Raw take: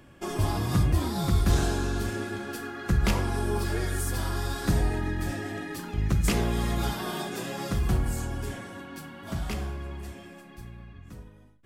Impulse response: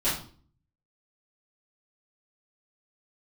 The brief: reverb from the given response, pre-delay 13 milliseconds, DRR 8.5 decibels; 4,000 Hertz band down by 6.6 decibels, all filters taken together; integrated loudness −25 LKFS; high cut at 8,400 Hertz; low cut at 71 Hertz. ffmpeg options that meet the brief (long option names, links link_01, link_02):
-filter_complex "[0:a]highpass=71,lowpass=8400,equalizer=frequency=4000:width_type=o:gain=-8.5,asplit=2[link_01][link_02];[1:a]atrim=start_sample=2205,adelay=13[link_03];[link_02][link_03]afir=irnorm=-1:irlink=0,volume=-19dB[link_04];[link_01][link_04]amix=inputs=2:normalize=0,volume=5dB"